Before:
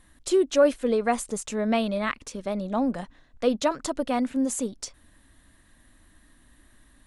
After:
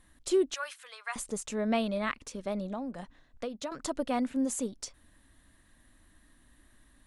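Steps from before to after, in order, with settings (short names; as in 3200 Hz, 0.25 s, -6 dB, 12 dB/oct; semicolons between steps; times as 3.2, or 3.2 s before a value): 0.54–1.16 HPF 1100 Hz 24 dB/oct; 2.66–3.72 compressor 12:1, threshold -29 dBFS, peak gain reduction 13 dB; gain -4.5 dB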